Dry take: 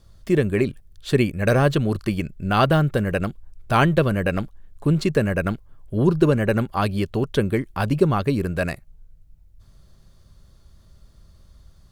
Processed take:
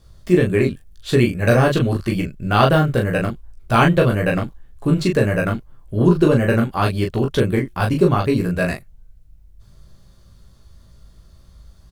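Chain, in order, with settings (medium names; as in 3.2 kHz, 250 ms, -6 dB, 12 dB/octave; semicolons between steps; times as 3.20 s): early reflections 17 ms -3.5 dB, 39 ms -4 dB; trim +1 dB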